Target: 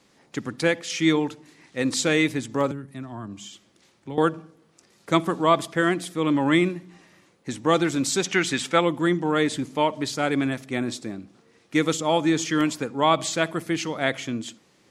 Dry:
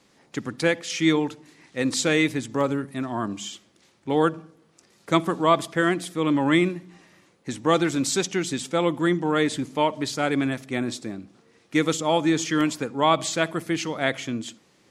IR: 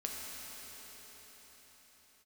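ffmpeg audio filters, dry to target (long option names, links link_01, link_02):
-filter_complex "[0:a]asettb=1/sr,asplit=3[link_01][link_02][link_03];[link_01]atrim=end=2.714[link_04];[link_02]atrim=start=2.71:end=4.18,asetpts=PTS-STARTPTS,afade=type=in:duration=0.004:curve=qsin,afade=type=out:start_time=1.466:duration=0.004:curve=qsin,acrossover=split=160[link_05][link_06];[link_06]acompressor=threshold=-41dB:ratio=2.5[link_07];[link_05][link_07]amix=inputs=2:normalize=0[link_08];[link_03]atrim=start=4.176[link_09];[link_04][link_08]acrossfade=duration=0.004:curve1=hsin:curve2=qsin[link_10];[link_10][link_09]acrossfade=duration=0.004:curve1=qsin:curve2=hsin,asplit=3[link_11][link_12][link_13];[link_11]afade=type=out:start_time=8.25:duration=0.02[link_14];[link_12]equalizer=frequency=1800:width=0.61:gain=10,afade=type=in:start_time=8.25:duration=0.02,afade=type=out:start_time=8.79:duration=0.02[link_15];[link_13]afade=type=in:start_time=8.79:duration=0.02[link_16];[link_14][link_15][link_16]amix=inputs=3:normalize=0"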